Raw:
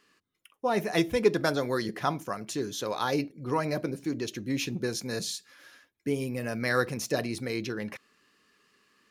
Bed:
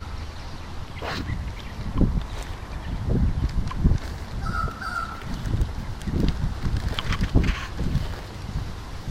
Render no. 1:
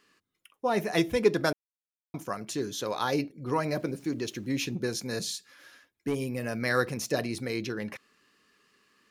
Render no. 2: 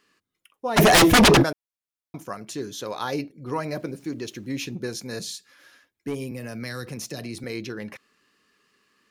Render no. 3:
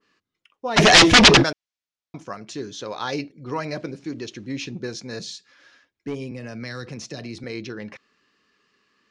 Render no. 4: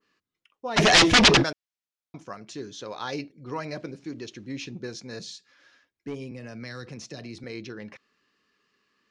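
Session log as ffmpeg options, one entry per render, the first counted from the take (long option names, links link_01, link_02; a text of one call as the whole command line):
ffmpeg -i in.wav -filter_complex "[0:a]asettb=1/sr,asplit=3[link_01][link_02][link_03];[link_01]atrim=end=3.584[link_04];[link_02]atrim=start=3.58:end=4.53,asetpts=PTS-STARTPTS,afade=type=in:duration=0.004:curve=qsin,afade=type=out:start_time=0.946:duration=0.004:curve=qsin,aeval=exprs='val(0)*gte(abs(val(0)),0.00168)':channel_layout=same[link_05];[link_03]atrim=start=4.526[link_06];[link_04][link_05]acrossfade=duration=0.004:curve1=hsin:curve2=qsin[link_07];[link_07][link_06]acrossfade=duration=0.004:curve1=qsin:curve2=hsin,asettb=1/sr,asplit=3[link_08][link_09][link_10];[link_08]atrim=end=5.264[link_11];[link_09]atrim=start=5.26:end=6.19,asetpts=PTS-STARTPTS,afade=type=in:duration=0.004:curve=qsin,afade=type=out:start_time=0.926:duration=0.004:curve=qsin,asoftclip=type=hard:threshold=-23dB[link_12];[link_10]atrim=start=6.186[link_13];[link_11][link_12]acrossfade=duration=0.004:curve1=hsin:curve2=qsin[link_14];[link_14][link_13]acrossfade=duration=0.004:curve1=qsin:curve2=hsin,asplit=3[link_15][link_16][link_17];[link_15]atrim=end=1.53,asetpts=PTS-STARTPTS,afade=type=out:start_time=1.526:duration=0.004:curve=hsin[link_18];[link_16]atrim=start=1.53:end=2.14,asetpts=PTS-STARTPTS,volume=0[link_19];[link_17]atrim=start=2.14,asetpts=PTS-STARTPTS,afade=type=in:duration=0.004:curve=hsin[link_20];[link_18][link_19][link_20]concat=n=3:v=0:a=1" out.wav
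ffmpeg -i in.wav -filter_complex "[0:a]asplit=3[link_01][link_02][link_03];[link_01]afade=type=out:start_time=0.76:duration=0.02[link_04];[link_02]aeval=exprs='0.299*sin(PI/2*8.91*val(0)/0.299)':channel_layout=same,afade=type=in:start_time=0.76:duration=0.02,afade=type=out:start_time=1.42:duration=0.02[link_05];[link_03]afade=type=in:start_time=1.42:duration=0.02[link_06];[link_04][link_05][link_06]amix=inputs=3:normalize=0,asettb=1/sr,asplit=3[link_07][link_08][link_09];[link_07]atrim=end=6.314[link_10];[link_08]atrim=start=6.31:end=7.44,asetpts=PTS-STARTPTS,afade=type=in:duration=0.004:curve=qsin,afade=type=out:start_time=1.126:duration=0.004:curve=qsin,acrossover=split=230|3000[link_11][link_12][link_13];[link_12]acompressor=threshold=-34dB:ratio=6:attack=3.2:release=140:knee=2.83:detection=peak[link_14];[link_11][link_14][link_13]amix=inputs=3:normalize=0[link_15];[link_09]atrim=start=7.436[link_16];[link_10][link_15]acrossfade=duration=0.004:curve1=hsin:curve2=qsin[link_17];[link_17][link_16]acrossfade=duration=0.004:curve1=qsin:curve2=hsin" out.wav
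ffmpeg -i in.wav -af "lowpass=frequency=6400:width=0.5412,lowpass=frequency=6400:width=1.3066,adynamicequalizer=threshold=0.0224:dfrequency=1600:dqfactor=0.7:tfrequency=1600:tqfactor=0.7:attack=5:release=100:ratio=0.375:range=4:mode=boostabove:tftype=highshelf" out.wav
ffmpeg -i in.wav -af "volume=-5dB" out.wav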